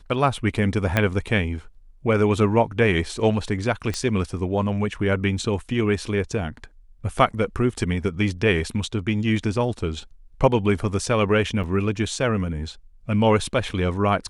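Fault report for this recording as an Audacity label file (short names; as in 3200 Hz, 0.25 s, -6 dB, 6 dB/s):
0.970000	0.970000	pop -7 dBFS
3.940000	3.940000	pop -13 dBFS
11.630000	11.640000	gap 6.7 ms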